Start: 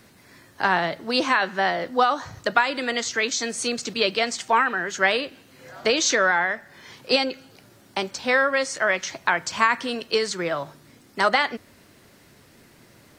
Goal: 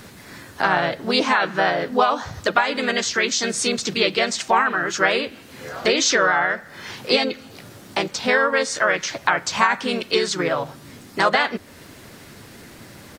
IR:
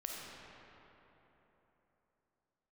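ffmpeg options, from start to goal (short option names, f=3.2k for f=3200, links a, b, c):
-filter_complex "[0:a]acompressor=threshold=-40dB:ratio=1.5,asplit=2[a][b];[b]asetrate=37084,aresample=44100,atempo=1.18921,volume=-4dB[c];[a][c]amix=inputs=2:normalize=0,volume=9dB"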